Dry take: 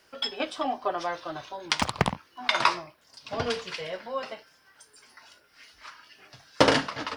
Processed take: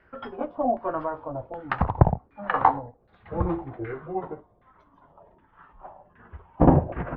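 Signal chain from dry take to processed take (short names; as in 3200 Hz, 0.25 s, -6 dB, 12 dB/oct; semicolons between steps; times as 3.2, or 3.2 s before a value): gliding pitch shift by -10.5 st starting unshifted; LFO low-pass saw down 1.3 Hz 580–1900 Hz; RIAA curve playback; gain -1.5 dB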